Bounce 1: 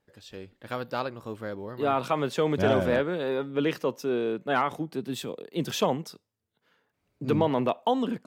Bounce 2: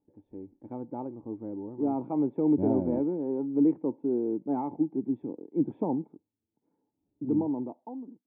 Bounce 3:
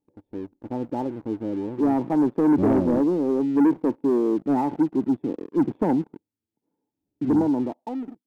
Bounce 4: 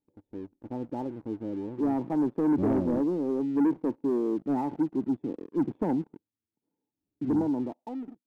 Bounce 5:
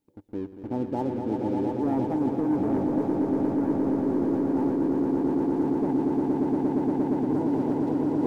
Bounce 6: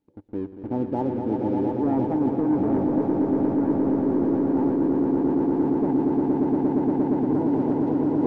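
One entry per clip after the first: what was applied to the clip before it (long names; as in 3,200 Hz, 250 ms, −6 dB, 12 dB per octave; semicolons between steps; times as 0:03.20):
fade-out on the ending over 1.46 s; formant resonators in series u; level +8 dB
leveller curve on the samples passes 2; level +1.5 dB
low-shelf EQ 320 Hz +3 dB; level −7.5 dB
echo that builds up and dies away 117 ms, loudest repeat 8, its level −5.5 dB; reversed playback; downward compressor 10 to 1, threshold −28 dBFS, peak gain reduction 13.5 dB; reversed playback; level +6.5 dB
low-pass filter 2,000 Hz 6 dB per octave; level +3 dB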